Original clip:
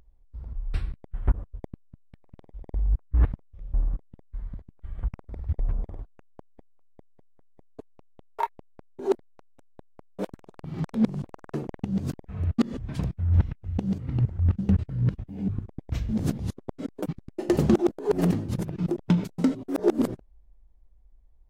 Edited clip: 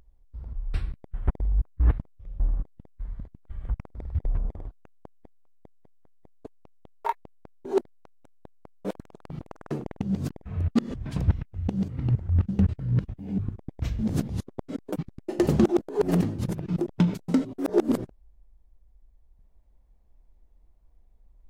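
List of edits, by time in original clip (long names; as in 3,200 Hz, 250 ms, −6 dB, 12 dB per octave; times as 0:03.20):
0:01.30–0:02.64: remove
0:10.73–0:11.22: remove
0:13.11–0:13.38: remove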